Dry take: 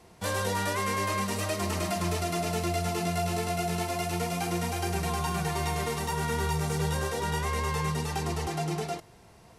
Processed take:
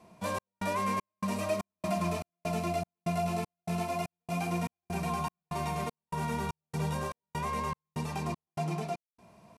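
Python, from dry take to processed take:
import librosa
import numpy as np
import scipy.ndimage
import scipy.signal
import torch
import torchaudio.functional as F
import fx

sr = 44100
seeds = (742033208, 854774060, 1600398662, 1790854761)

y = fx.low_shelf(x, sr, hz=64.0, db=-10.0)
y = fx.small_body(y, sr, hz=(200.0, 630.0, 1000.0, 2400.0), ring_ms=25, db=12)
y = fx.step_gate(y, sr, bpm=196, pattern='xxxxx...', floor_db=-60.0, edge_ms=4.5)
y = F.gain(torch.from_numpy(y), -8.5).numpy()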